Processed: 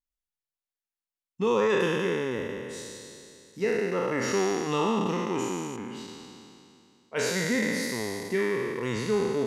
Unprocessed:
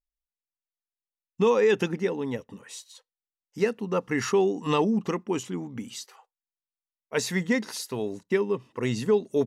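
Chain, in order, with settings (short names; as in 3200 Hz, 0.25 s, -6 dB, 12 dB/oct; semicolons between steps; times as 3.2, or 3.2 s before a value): spectral trails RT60 2.58 s; 5.76–7.16 tone controls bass -3 dB, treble -12 dB; gain -6 dB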